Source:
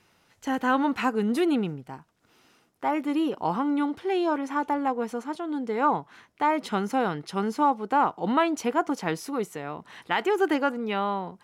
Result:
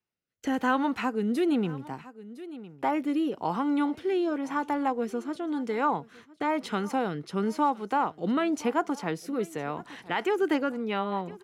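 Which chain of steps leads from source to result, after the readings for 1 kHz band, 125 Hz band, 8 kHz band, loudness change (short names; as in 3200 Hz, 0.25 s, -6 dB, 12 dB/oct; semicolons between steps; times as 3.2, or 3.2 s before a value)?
-3.5 dB, -1.0 dB, -3.0 dB, -2.5 dB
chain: gate -51 dBFS, range -36 dB; rotary speaker horn 1 Hz, later 5 Hz, at 9.78; on a send: echo 1.009 s -23 dB; on the sum: three-band squash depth 40%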